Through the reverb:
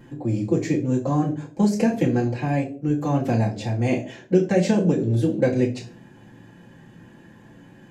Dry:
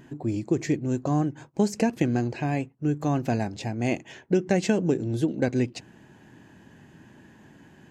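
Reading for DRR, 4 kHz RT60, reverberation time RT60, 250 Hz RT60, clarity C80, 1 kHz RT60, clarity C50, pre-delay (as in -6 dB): -6.5 dB, 0.30 s, 0.50 s, 0.65 s, 16.5 dB, 0.35 s, 12.0 dB, 4 ms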